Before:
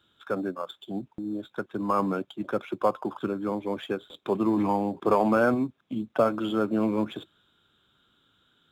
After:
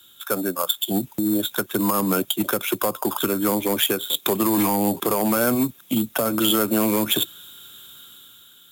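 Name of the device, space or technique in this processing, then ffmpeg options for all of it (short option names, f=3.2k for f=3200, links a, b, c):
FM broadcast chain: -filter_complex "[0:a]highpass=61,dynaudnorm=f=140:g=11:m=8dB,acrossover=split=120|430[a][b][c];[a]acompressor=threshold=-38dB:ratio=4[d];[b]acompressor=threshold=-23dB:ratio=4[e];[c]acompressor=threshold=-24dB:ratio=4[f];[d][e][f]amix=inputs=3:normalize=0,aemphasis=mode=production:type=75fm,alimiter=limit=-17dB:level=0:latency=1:release=175,asoftclip=type=hard:threshold=-20dB,lowpass=f=15k:w=0.5412,lowpass=f=15k:w=1.3066,aemphasis=mode=production:type=75fm,volume=5.5dB"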